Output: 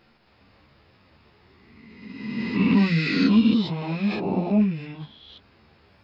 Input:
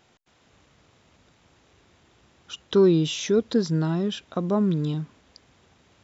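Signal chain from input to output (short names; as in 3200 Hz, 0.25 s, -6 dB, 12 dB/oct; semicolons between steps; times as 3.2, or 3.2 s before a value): spectral swells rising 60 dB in 1.69 s; formant shift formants -6 st; ensemble effect; gain +2.5 dB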